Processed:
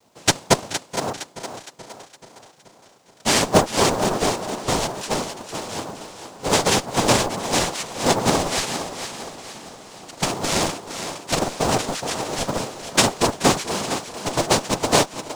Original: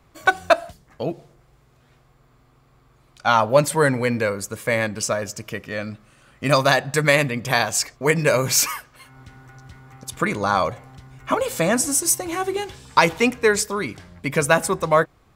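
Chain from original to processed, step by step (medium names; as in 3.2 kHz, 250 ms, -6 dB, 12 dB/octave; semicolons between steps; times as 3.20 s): treble shelf 5.9 kHz -10.5 dB; noise-vocoded speech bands 2; in parallel at -8 dB: Schmitt trigger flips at -13.5 dBFS; on the sum: companded quantiser 6-bit; on a send: thinning echo 463 ms, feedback 44%, high-pass 230 Hz, level -9 dB; on the sum: modulated delay 429 ms, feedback 60%, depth 51 cents, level -17 dB; trim -1.5 dB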